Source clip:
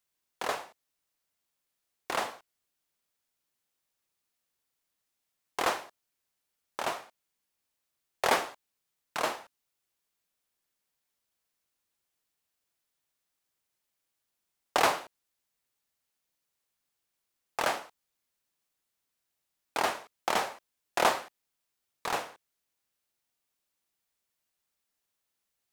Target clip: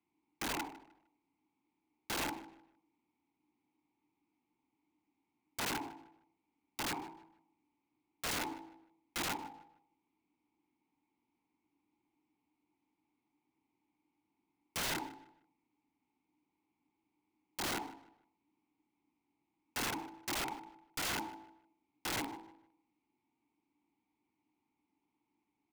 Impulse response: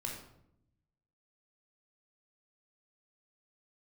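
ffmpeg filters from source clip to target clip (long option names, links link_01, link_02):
-filter_complex "[0:a]asplit=3[link_01][link_02][link_03];[link_01]bandpass=frequency=300:width_type=q:width=8,volume=0dB[link_04];[link_02]bandpass=frequency=870:width_type=q:width=8,volume=-6dB[link_05];[link_03]bandpass=frequency=2240:width_type=q:width=8,volume=-9dB[link_06];[link_04][link_05][link_06]amix=inputs=3:normalize=0,lowshelf=frequency=170:gain=9,bandreject=frequency=54.39:width_type=h:width=4,bandreject=frequency=108.78:width_type=h:width=4,bandreject=frequency=163.17:width_type=h:width=4,bandreject=frequency=217.56:width_type=h:width=4,bandreject=frequency=271.95:width_type=h:width=4,bandreject=frequency=326.34:width_type=h:width=4,bandreject=frequency=380.73:width_type=h:width=4,bandreject=frequency=435.12:width_type=h:width=4,bandreject=frequency=489.51:width_type=h:width=4,bandreject=frequency=543.9:width_type=h:width=4,bandreject=frequency=598.29:width_type=h:width=4,bandreject=frequency=652.68:width_type=h:width=4,bandreject=frequency=707.07:width_type=h:width=4,bandreject=frequency=761.46:width_type=h:width=4,bandreject=frequency=815.85:width_type=h:width=4,bandreject=frequency=870.24:width_type=h:width=4,bandreject=frequency=924.63:width_type=h:width=4,bandreject=frequency=979.02:width_type=h:width=4,acrossover=split=140[link_07][link_08];[link_08]acompressor=threshold=-58dB:ratio=2[link_09];[link_07][link_09]amix=inputs=2:normalize=0,acrusher=bits=5:mode=log:mix=0:aa=0.000001,tiltshelf=frequency=1400:gain=7,aeval=exprs='(mod(266*val(0)+1,2)-1)/266':channel_layout=same,asplit=2[link_10][link_11];[link_11]adelay=153,lowpass=frequency=3600:poles=1,volume=-17dB,asplit=2[link_12][link_13];[link_13]adelay=153,lowpass=frequency=3600:poles=1,volume=0.31,asplit=2[link_14][link_15];[link_15]adelay=153,lowpass=frequency=3600:poles=1,volume=0.31[link_16];[link_12][link_14][link_16]amix=inputs=3:normalize=0[link_17];[link_10][link_17]amix=inputs=2:normalize=0,volume=17dB"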